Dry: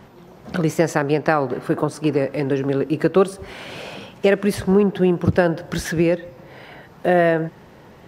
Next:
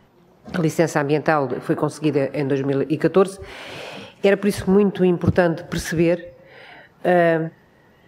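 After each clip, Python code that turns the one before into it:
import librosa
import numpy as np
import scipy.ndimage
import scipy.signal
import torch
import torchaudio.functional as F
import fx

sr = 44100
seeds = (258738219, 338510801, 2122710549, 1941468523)

y = fx.noise_reduce_blind(x, sr, reduce_db=9)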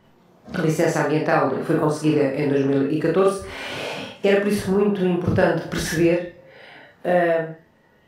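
y = fx.rev_schroeder(x, sr, rt60_s=0.34, comb_ms=26, drr_db=-2.0)
y = fx.rider(y, sr, range_db=5, speed_s=0.5)
y = F.gain(torch.from_numpy(y), -4.0).numpy()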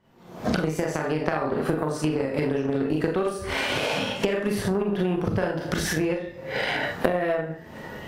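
y = fx.recorder_agc(x, sr, target_db=-7.5, rise_db_per_s=66.0, max_gain_db=30)
y = fx.cheby_harmonics(y, sr, harmonics=(3, 6), levels_db=(-15, -32), full_scale_db=1.5)
y = F.gain(torch.from_numpy(y), -4.0).numpy()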